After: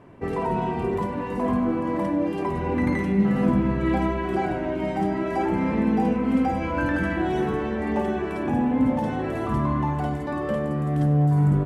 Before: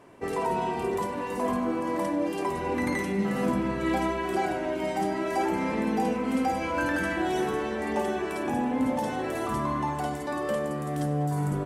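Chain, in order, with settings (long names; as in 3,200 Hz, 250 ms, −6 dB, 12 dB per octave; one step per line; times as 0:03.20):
bass and treble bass +10 dB, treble −12 dB
level +1 dB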